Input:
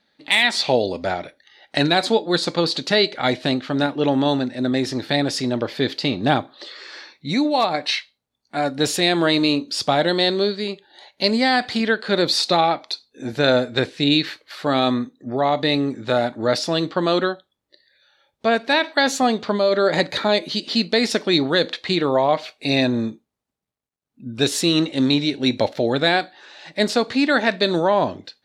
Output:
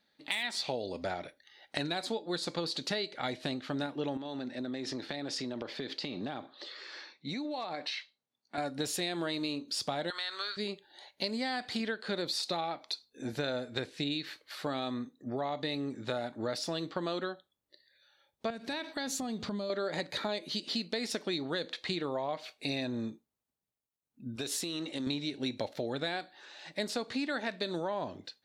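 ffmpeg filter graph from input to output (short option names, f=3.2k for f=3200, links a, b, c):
-filter_complex "[0:a]asettb=1/sr,asplit=3[a][b][c];[a]atrim=end=4.174[d];[b]atrim=start=4.17:end=8.58,asetpts=PTS-STARTPTS,afade=t=in:d=0.004:c=qsin,afade=t=out:st=4.406:d=0.004:c=qsin,highpass=160,lowpass=5.9k,acompressor=threshold=-24dB:ratio=12:attack=3.2:release=140:knee=1:detection=peak[e];[c]atrim=start=8.576[f];[d][e]acrossfade=d=0.004:c1=hsin:c2=qsin[g];[g][f]acrossfade=d=0.004:c1=qsin:c2=hsin,asettb=1/sr,asplit=3[h][i][j];[h]atrim=end=10.104[k];[i]atrim=start=10.1:end=10.57,asetpts=PTS-STARTPTS,afade=t=in:d=0.004:c=qsin,afade=t=out:st=0.466:d=0.004:c=qsin,highpass=f=1.3k:t=q:w=4.1,acompressor=threshold=-22dB:ratio=2.5:attack=3.2:release=140:knee=1:detection=peak[l];[j]atrim=start=10.566[m];[k][l]acrossfade=d=0.004:c1=hsin:c2=qsin[n];[n][m]acrossfade=d=0.004:c1=qsin:c2=hsin,asettb=1/sr,asplit=3[o][p][q];[o]atrim=end=18.504[r];[p]atrim=start=18.5:end=19.7,asetpts=PTS-STARTPTS,afade=t=in:d=0.004:c=qsin,afade=t=out:st=1.196:d=0.004:c=qsin,bass=f=250:g=14,treble=f=4k:g=5,acompressor=threshold=-25dB:ratio=4:attack=3.2:release=140:knee=1:detection=peak[s];[q]atrim=start=19.696[t];[r][s]acrossfade=d=0.004:c1=hsin:c2=qsin[u];[u][t]acrossfade=d=0.004:c1=qsin:c2=hsin,asettb=1/sr,asplit=3[v][w][x];[v]atrim=end=24.364[y];[w]atrim=start=24.36:end=25.07,asetpts=PTS-STARTPTS,afade=t=in:d=0.004:c=qsin,afade=t=out:st=0.706:d=0.004:c=qsin,highpass=f=190:p=1,acompressor=threshold=-23dB:ratio=6:attack=3.2:release=140:knee=1:detection=peak[z];[x]atrim=start=25.066[aa];[y][z]acrossfade=d=0.004:c1=hsin:c2=qsin[ab];[ab][aa]acrossfade=d=0.004:c1=qsin:c2=hsin,highshelf=f=8.8k:g=9,acompressor=threshold=-23dB:ratio=5,volume=-8.5dB"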